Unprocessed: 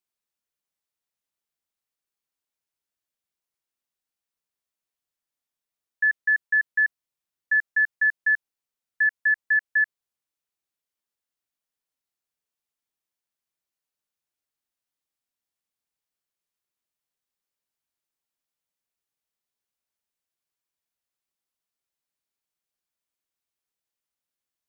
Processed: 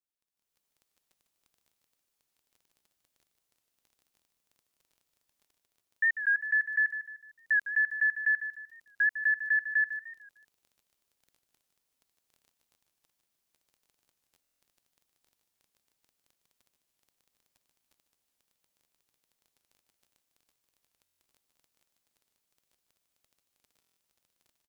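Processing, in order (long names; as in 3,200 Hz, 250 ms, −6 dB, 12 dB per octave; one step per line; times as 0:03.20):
surface crackle 16 per second −56 dBFS
automatic gain control gain up to 15.5 dB
brickwall limiter −9.5 dBFS, peak gain reduction 7 dB
parametric band 1,500 Hz −3.5 dB 1.7 octaves
repeating echo 151 ms, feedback 37%, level −10.5 dB
buffer that repeats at 0:14.42/0:21.02/0:23.79, samples 1,024, times 7
wow of a warped record 45 rpm, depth 100 cents
level −8 dB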